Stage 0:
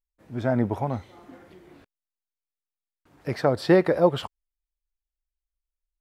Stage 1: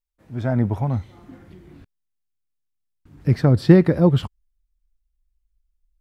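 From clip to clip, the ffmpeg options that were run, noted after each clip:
ffmpeg -i in.wav -af "asubboost=boost=10:cutoff=220" out.wav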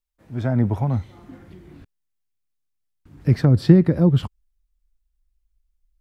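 ffmpeg -i in.wav -filter_complex "[0:a]acrossover=split=330[link_01][link_02];[link_02]acompressor=threshold=-26dB:ratio=6[link_03];[link_01][link_03]amix=inputs=2:normalize=0,volume=1dB" out.wav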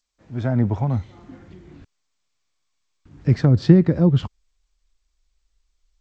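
ffmpeg -i in.wav -ar 16000 -c:a g722 out.g722

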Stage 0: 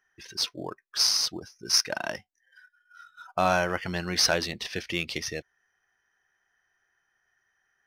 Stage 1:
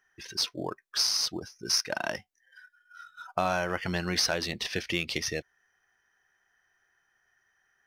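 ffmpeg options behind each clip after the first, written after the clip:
ffmpeg -i in.wav -af "acompressor=threshold=-27dB:ratio=3,volume=2dB" out.wav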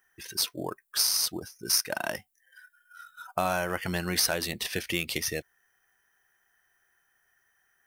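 ffmpeg -i in.wav -af "aexciter=amount=5.6:drive=3.4:freq=7600" out.wav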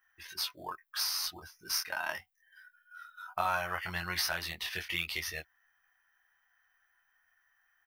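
ffmpeg -i in.wav -af "equalizer=frequency=125:width_type=o:width=1:gain=-12,equalizer=frequency=250:width_type=o:width=1:gain=-12,equalizer=frequency=500:width_type=o:width=1:gain=-12,equalizer=frequency=1000:width_type=o:width=1:gain=4,equalizer=frequency=8000:width_type=o:width=1:gain=-11,equalizer=frequency=16000:width_type=o:width=1:gain=-5,aecho=1:1:11|24:0.562|0.668,volume=-3.5dB" out.wav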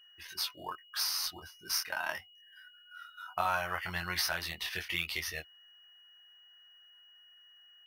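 ffmpeg -i in.wav -af "aeval=exprs='val(0)+0.00141*sin(2*PI*2900*n/s)':channel_layout=same" out.wav

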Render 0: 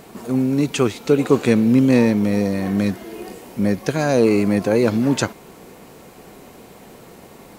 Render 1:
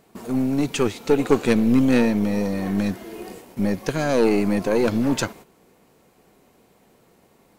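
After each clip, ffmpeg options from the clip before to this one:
ffmpeg -i in.wav -af "aeval=exprs='0.794*(cos(1*acos(clip(val(0)/0.794,-1,1)))-cos(1*PI/2))+0.141*(cos(2*acos(clip(val(0)/0.794,-1,1)))-cos(2*PI/2))+0.158*(cos(4*acos(clip(val(0)/0.794,-1,1)))-cos(4*PI/2))':channel_layout=same,agate=range=-12dB:threshold=-38dB:ratio=16:detection=peak,volume=-2.5dB" out.wav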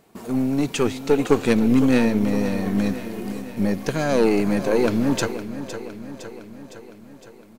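ffmpeg -i in.wav -af "aecho=1:1:510|1020|1530|2040|2550|3060|3570:0.251|0.151|0.0904|0.0543|0.0326|0.0195|0.0117" out.wav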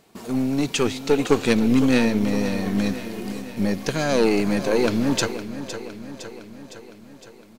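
ffmpeg -i in.wav -af "equalizer=frequency=4400:width=0.66:gain=6,volume=-1dB" out.wav

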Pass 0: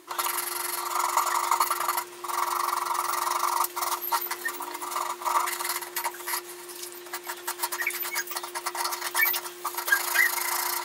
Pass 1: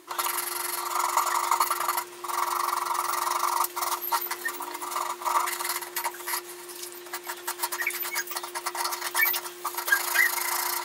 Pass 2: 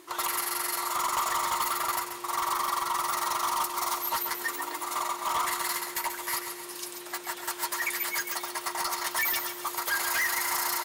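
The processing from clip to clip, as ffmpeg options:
ffmpeg -i in.wav -af anull out.wav
ffmpeg -i in.wav -af "asoftclip=type=hard:threshold=-25dB,aecho=1:1:135|270|405|540:0.398|0.143|0.0516|0.0186" out.wav

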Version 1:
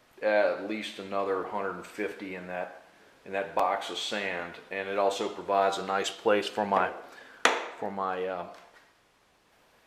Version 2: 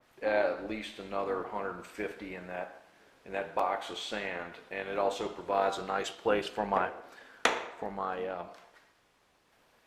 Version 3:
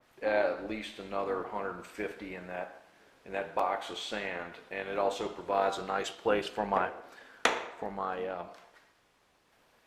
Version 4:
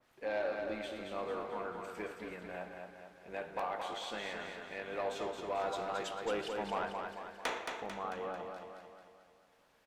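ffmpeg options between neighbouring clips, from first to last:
ffmpeg -i in.wav -af "tremolo=f=240:d=0.462,adynamicequalizer=threshold=0.00708:dfrequency=2500:dqfactor=0.7:tfrequency=2500:tqfactor=0.7:attack=5:release=100:ratio=0.375:range=2:mode=cutabove:tftype=highshelf,volume=-1.5dB" out.wav
ffmpeg -i in.wav -af anull out.wav
ffmpeg -i in.wav -filter_complex "[0:a]asoftclip=type=tanh:threshold=-22dB,asplit=2[link_01][link_02];[link_02]aecho=0:1:222|444|666|888|1110|1332|1554:0.562|0.292|0.152|0.0791|0.0411|0.0214|0.0111[link_03];[link_01][link_03]amix=inputs=2:normalize=0,volume=-5.5dB" out.wav

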